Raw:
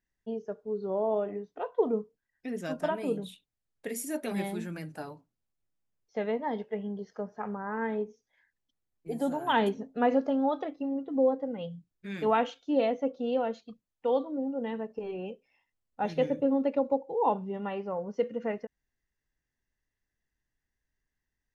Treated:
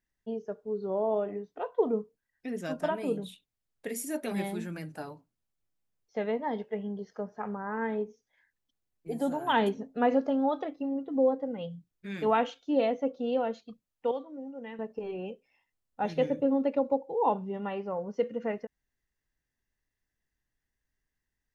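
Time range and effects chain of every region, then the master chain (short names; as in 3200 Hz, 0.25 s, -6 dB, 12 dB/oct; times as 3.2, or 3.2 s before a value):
14.11–14.79 short-mantissa float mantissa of 8-bit + rippled Chebyshev low-pass 7900 Hz, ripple 9 dB
whole clip: dry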